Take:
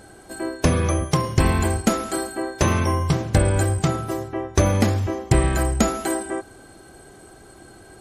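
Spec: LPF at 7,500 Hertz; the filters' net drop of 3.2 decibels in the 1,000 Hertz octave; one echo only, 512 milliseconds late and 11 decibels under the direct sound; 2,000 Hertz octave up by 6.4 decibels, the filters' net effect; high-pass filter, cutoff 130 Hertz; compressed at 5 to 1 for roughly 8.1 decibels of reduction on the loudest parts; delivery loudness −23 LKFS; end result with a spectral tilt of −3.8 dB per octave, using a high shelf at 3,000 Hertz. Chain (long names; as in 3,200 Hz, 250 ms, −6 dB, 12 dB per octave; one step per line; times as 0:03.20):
high-pass filter 130 Hz
low-pass filter 7,500 Hz
parametric band 1,000 Hz −7.5 dB
parametric band 2,000 Hz +8 dB
high-shelf EQ 3,000 Hz +7 dB
downward compressor 5 to 1, threshold −24 dBFS
single-tap delay 512 ms −11 dB
level +5.5 dB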